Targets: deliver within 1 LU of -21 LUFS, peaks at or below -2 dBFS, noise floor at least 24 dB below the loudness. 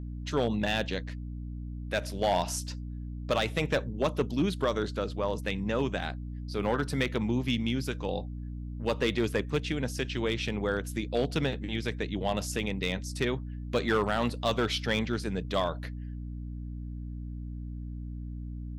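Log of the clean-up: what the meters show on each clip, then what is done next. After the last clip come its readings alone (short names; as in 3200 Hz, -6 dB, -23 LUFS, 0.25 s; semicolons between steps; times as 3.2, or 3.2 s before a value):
clipped 0.4%; flat tops at -19.0 dBFS; hum 60 Hz; harmonics up to 300 Hz; hum level -35 dBFS; loudness -31.5 LUFS; peak -19.0 dBFS; loudness target -21.0 LUFS
-> clip repair -19 dBFS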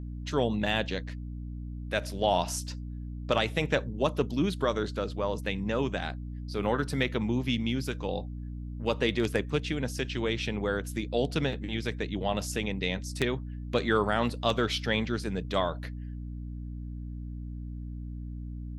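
clipped 0.0%; hum 60 Hz; harmonics up to 300 Hz; hum level -35 dBFS
-> de-hum 60 Hz, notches 5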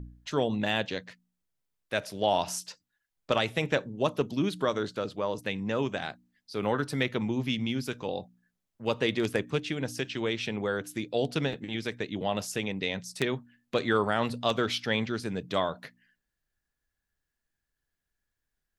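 hum none; loudness -30.5 LUFS; peak -10.5 dBFS; loudness target -21.0 LUFS
-> gain +9.5 dB; limiter -2 dBFS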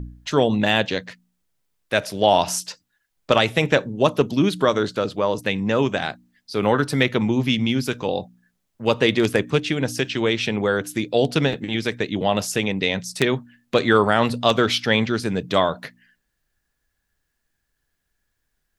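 loudness -21.0 LUFS; peak -2.0 dBFS; noise floor -75 dBFS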